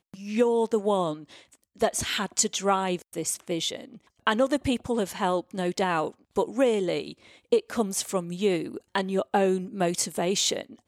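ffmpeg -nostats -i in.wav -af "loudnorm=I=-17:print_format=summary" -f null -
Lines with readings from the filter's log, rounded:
Input Integrated:    -26.9 LUFS
Input True Peak:      -9.0 dBTP
Input LRA:             1.2 LU
Input Threshold:     -37.1 LUFS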